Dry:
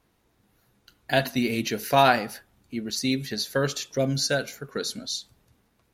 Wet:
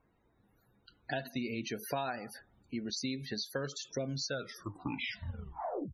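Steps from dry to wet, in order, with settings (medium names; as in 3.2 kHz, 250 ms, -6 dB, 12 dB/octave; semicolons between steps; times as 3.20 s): tape stop on the ending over 1.66 s; compression 6:1, threshold -30 dBFS, peak gain reduction 15.5 dB; loudest bins only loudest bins 64; trim -3.5 dB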